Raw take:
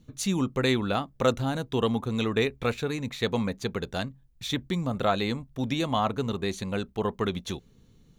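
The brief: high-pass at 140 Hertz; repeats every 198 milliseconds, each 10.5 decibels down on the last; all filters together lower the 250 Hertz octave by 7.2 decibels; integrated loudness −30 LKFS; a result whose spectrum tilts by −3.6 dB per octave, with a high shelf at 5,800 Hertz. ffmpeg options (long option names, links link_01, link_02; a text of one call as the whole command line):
ffmpeg -i in.wav -af "highpass=140,equalizer=frequency=250:width_type=o:gain=-8.5,highshelf=frequency=5800:gain=-9,aecho=1:1:198|396|594:0.299|0.0896|0.0269,volume=1.5dB" out.wav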